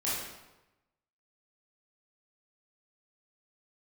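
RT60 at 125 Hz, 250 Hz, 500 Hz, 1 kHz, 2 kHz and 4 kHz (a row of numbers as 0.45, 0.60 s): 1.1, 1.0, 1.0, 1.0, 0.90, 0.80 s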